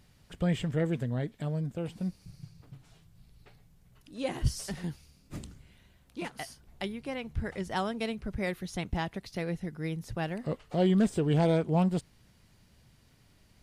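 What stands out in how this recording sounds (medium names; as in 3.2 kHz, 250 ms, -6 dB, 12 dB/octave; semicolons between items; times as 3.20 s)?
noise floor -63 dBFS; spectral tilt -6.5 dB/octave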